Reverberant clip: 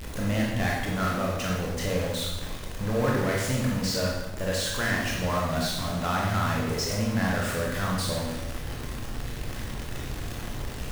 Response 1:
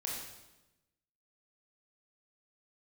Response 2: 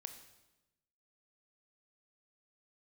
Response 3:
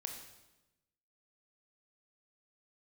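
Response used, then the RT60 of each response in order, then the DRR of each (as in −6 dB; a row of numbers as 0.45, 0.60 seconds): 1; 1.0, 1.0, 1.0 seconds; −3.5, 7.0, 3.0 decibels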